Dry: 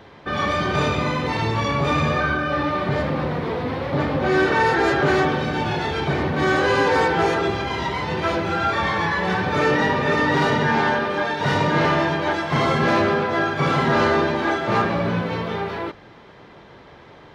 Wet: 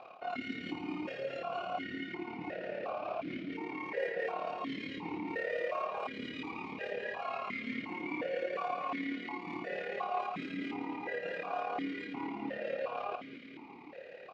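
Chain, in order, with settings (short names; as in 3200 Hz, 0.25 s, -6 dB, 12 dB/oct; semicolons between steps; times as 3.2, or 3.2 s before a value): reverse; compressor 10:1, threshold -30 dBFS, peak gain reduction 15.5 dB; reverse; varispeed +21%; AM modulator 36 Hz, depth 55%; feedback echo 0.209 s, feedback 59%, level -9 dB; vowel sequencer 2.8 Hz; gain +8.5 dB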